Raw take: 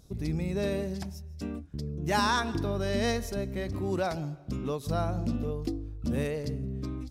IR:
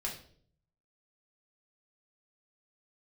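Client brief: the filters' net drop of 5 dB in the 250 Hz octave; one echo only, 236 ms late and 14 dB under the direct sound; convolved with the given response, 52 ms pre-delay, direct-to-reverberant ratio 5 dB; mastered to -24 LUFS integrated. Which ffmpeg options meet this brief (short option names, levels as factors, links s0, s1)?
-filter_complex "[0:a]equalizer=f=250:t=o:g=-7,aecho=1:1:236:0.2,asplit=2[s0][s1];[1:a]atrim=start_sample=2205,adelay=52[s2];[s1][s2]afir=irnorm=-1:irlink=0,volume=0.473[s3];[s0][s3]amix=inputs=2:normalize=0,volume=2.51"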